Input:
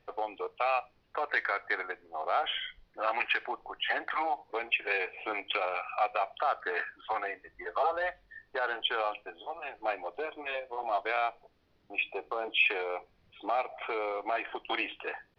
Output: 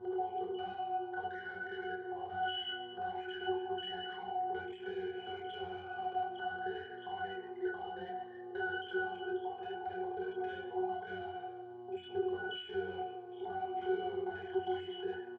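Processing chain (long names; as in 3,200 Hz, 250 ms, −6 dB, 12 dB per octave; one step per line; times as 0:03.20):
reversed piece by piece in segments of 45 ms
bass and treble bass −7 dB, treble +12 dB
repeating echo 141 ms, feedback 41%, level −19 dB
on a send at −14 dB: convolution reverb RT60 1.7 s, pre-delay 5 ms
on the sum: hum with harmonics 120 Hz, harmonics 10, −51 dBFS −3 dB per octave
brickwall limiter −23 dBFS, peak gain reduction 10 dB
multi-voice chorus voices 6, 0.15 Hz, delay 27 ms, depth 3.7 ms
mid-hump overdrive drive 15 dB, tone 4,000 Hz, clips at −21.5 dBFS
downward compressor, threshold −33 dBFS, peak gain reduction 6.5 dB
parametric band 380 Hz +14 dB 0.24 octaves
leveller curve on the samples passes 2
resonances in every octave F#, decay 0.35 s
level +7 dB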